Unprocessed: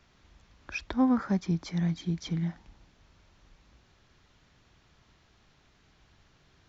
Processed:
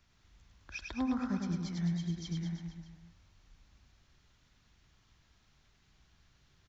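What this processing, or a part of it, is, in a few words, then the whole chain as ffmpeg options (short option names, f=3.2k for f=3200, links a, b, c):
smiley-face EQ: -filter_complex "[0:a]lowshelf=f=120:g=5.5,equalizer=f=470:t=o:w=1.7:g=-4.5,highshelf=f=5.2k:g=7,asettb=1/sr,asplit=3[a][b][c];[a]atrim=end=1.614[d];[b]atrim=start=1.61:end=2.29,asetpts=PTS-STARTPTS,afade=t=in:d=0.004:c=qsin,afade=t=out:st=0.676:d=0.004:c=qsin,bandreject=f=2.4k:w=9.3[e];[c]atrim=start=2.286[f];[d][e]acrossfade=d=0.004:c1=hsin:c2=qsin[g];[g][f]acrossfade=d=0.004:c1=qsin:c2=hsin,aecho=1:1:100|210|331|464.1|610.5:0.631|0.398|0.251|0.158|0.1,volume=-8.5dB"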